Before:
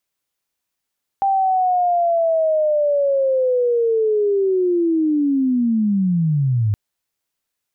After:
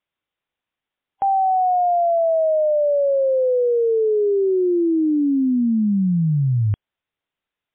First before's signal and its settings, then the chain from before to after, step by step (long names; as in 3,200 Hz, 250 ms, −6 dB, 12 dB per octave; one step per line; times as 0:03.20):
glide linear 790 Hz → 100 Hz −14 dBFS → −14.5 dBFS 5.52 s
MP3 32 kbit/s 8,000 Hz